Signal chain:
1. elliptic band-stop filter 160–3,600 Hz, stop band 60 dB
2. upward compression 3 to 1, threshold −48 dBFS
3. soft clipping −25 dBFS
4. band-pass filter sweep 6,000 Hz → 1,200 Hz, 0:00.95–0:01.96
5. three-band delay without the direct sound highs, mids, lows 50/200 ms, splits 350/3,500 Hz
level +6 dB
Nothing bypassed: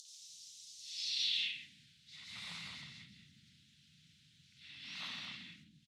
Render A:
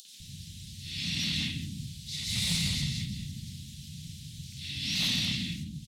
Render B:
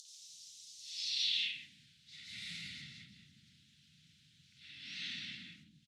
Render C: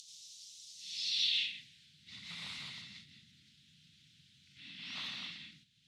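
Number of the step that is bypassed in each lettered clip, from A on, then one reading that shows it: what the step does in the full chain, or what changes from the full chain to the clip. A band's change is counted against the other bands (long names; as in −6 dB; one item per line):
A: 4, 125 Hz band +18.5 dB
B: 3, distortion level −18 dB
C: 5, echo-to-direct ratio 18.0 dB to none audible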